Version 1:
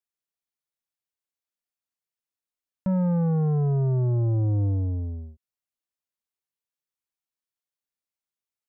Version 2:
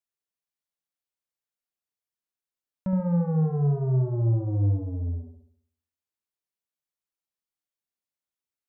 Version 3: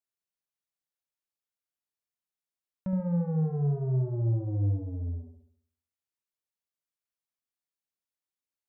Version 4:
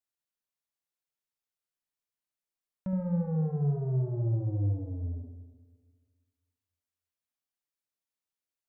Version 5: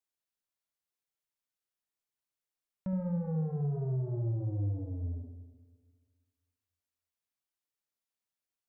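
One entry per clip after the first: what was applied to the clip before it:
delay with a low-pass on its return 69 ms, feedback 47%, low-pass 1,000 Hz, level −4 dB; level −3 dB
dynamic equaliser 1,100 Hz, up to −6 dB, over −54 dBFS, Q 2; level −4 dB
comb and all-pass reverb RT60 1.7 s, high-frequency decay 0.4×, pre-delay 20 ms, DRR 11.5 dB; level −1.5 dB
brickwall limiter −26.5 dBFS, peak gain reduction 5 dB; level −1.5 dB

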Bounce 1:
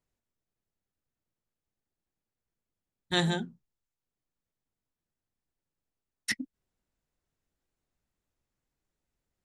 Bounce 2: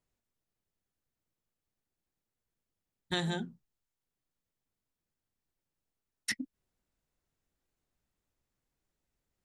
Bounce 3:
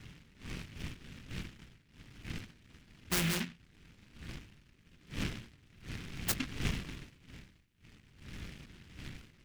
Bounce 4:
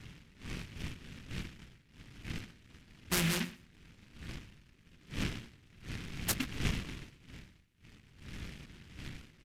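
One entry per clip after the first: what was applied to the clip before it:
downward compressor 4 to 1, threshold −30 dBFS, peak gain reduction 7.5 dB
wind on the microphone 210 Hz −46 dBFS; short delay modulated by noise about 2,200 Hz, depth 0.4 ms; level +1 dB
repeating echo 120 ms, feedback 18%, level −19 dB; downsampling to 32,000 Hz; level +1 dB

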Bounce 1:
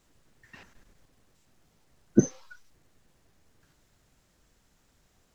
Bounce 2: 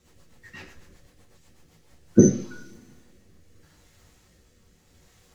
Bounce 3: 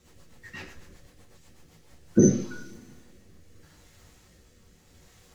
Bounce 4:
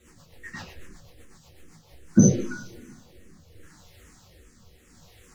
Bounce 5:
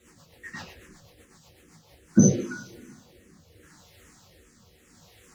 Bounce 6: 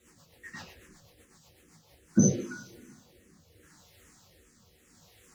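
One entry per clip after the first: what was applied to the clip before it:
coupled-rooms reverb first 0.39 s, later 1.8 s, from −26 dB, DRR −4.5 dB; rotating-speaker cabinet horn 8 Hz, later 0.8 Hz, at 0:01.52; level +4.5 dB
brickwall limiter −9.5 dBFS, peak gain reduction 8 dB; level +2 dB
frequency shifter mixed with the dry sound −2.5 Hz; level +6 dB
high-pass filter 110 Hz 6 dB per octave
high-shelf EQ 6,100 Hz +4 dB; level −5 dB

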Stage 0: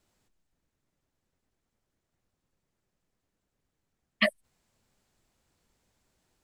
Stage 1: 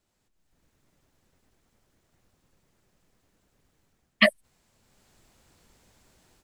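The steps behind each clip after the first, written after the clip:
automatic gain control gain up to 15.5 dB
level −3.5 dB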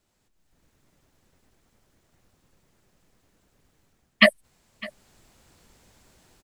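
single-tap delay 606 ms −21.5 dB
level +3.5 dB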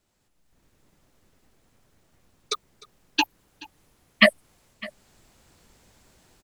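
delay with pitch and tempo change per echo 203 ms, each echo +6 semitones, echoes 2, each echo −6 dB

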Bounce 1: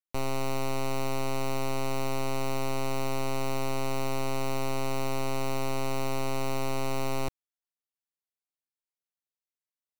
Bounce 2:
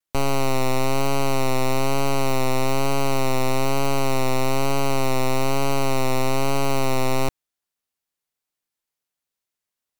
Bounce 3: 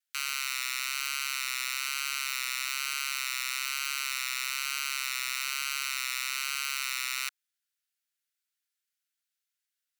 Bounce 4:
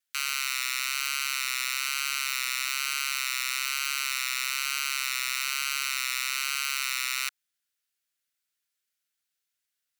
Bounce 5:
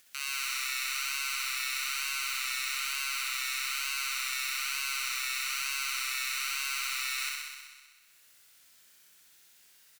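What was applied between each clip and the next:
pitch vibrato 1.1 Hz 47 cents; level +9 dB
elliptic high-pass filter 1,400 Hz, stop band 50 dB
parametric band 880 Hz −3.5 dB 0.2 octaves; level +3 dB
upward compression, threshold −35 dBFS; double-tracking delay 28 ms −8 dB; flutter between parallel walls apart 10.9 metres, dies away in 1.5 s; level −7.5 dB

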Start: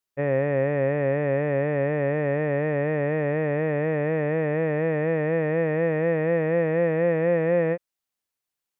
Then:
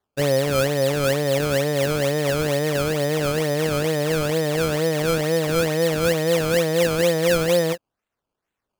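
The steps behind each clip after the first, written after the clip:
reverb reduction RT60 0.77 s
sample-and-hold swept by an LFO 16×, swing 100% 2.2 Hz
level +5 dB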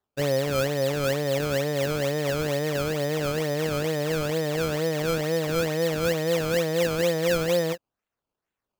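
parametric band 9,700 Hz −6.5 dB 0.25 octaves
level −4.5 dB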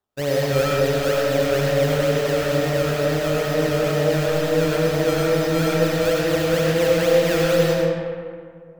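comb and all-pass reverb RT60 2.2 s, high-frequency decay 0.5×, pre-delay 45 ms, DRR −4 dB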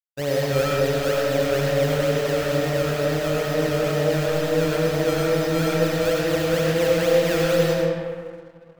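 dead-zone distortion −51 dBFS
level −1.5 dB

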